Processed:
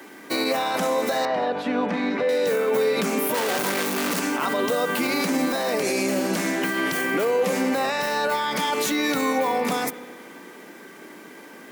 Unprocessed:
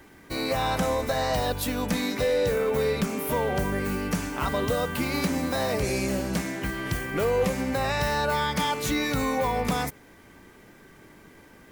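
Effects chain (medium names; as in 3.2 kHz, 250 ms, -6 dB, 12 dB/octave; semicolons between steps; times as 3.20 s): 3.34–4.20 s: one-bit comparator; high-pass 220 Hz 24 dB/octave; peak limiter -24 dBFS, peak gain reduction 9.5 dB; 1.25–2.29 s: low-pass 2.2 kHz 12 dB/octave; on a send: reverberation RT60 2.0 s, pre-delay 57 ms, DRR 14 dB; on the sum: trim +9 dB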